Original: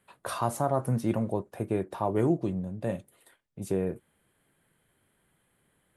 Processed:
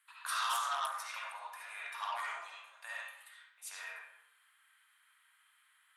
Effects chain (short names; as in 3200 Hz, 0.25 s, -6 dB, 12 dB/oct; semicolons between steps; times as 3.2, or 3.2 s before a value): steep high-pass 1100 Hz 36 dB/oct; reverb RT60 0.80 s, pre-delay 30 ms, DRR -6.5 dB; core saturation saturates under 3200 Hz